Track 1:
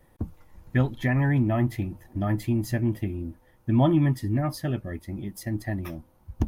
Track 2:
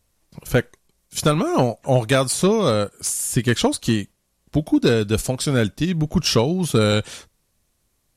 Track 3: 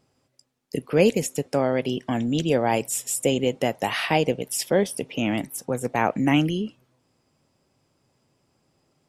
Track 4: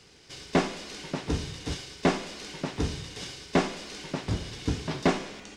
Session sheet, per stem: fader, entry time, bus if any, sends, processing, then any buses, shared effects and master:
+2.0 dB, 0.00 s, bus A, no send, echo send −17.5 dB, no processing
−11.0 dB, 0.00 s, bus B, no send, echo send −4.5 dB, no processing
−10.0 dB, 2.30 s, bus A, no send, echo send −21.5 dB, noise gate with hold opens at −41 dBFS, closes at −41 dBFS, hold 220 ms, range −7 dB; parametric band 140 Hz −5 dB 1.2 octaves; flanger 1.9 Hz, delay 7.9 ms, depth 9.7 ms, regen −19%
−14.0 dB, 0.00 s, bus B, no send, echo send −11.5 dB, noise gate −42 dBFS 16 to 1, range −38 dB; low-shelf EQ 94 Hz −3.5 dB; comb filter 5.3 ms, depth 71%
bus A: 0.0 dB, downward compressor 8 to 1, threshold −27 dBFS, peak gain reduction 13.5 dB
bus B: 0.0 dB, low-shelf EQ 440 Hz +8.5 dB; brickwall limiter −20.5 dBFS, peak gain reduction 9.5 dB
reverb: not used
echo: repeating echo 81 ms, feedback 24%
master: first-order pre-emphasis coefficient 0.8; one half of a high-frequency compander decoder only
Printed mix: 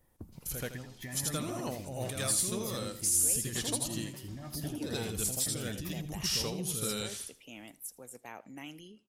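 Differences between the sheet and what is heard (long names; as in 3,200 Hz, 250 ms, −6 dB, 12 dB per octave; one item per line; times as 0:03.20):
stem 2 −11.0 dB → −3.5 dB
stem 3: missing flanger 1.9 Hz, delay 7.9 ms, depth 9.7 ms, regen −19%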